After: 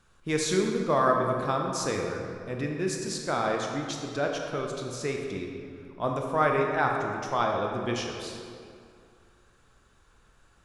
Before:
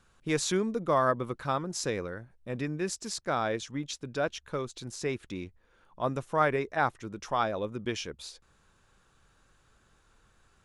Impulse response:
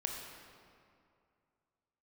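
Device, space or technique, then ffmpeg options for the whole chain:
stairwell: -filter_complex "[1:a]atrim=start_sample=2205[s0];[0:a][s0]afir=irnorm=-1:irlink=0,volume=1.19"

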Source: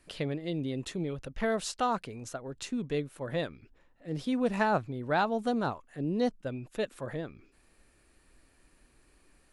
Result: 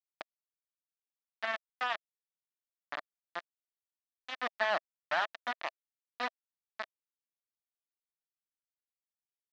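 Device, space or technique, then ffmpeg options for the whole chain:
hand-held game console: -af "acrusher=bits=3:mix=0:aa=0.000001,highpass=450,equalizer=f=450:t=q:w=4:g=-10,equalizer=f=650:t=q:w=4:g=7,equalizer=f=1200:t=q:w=4:g=4,equalizer=f=1800:t=q:w=4:g=8,lowpass=f=4200:w=0.5412,lowpass=f=4200:w=1.3066,volume=0.398"

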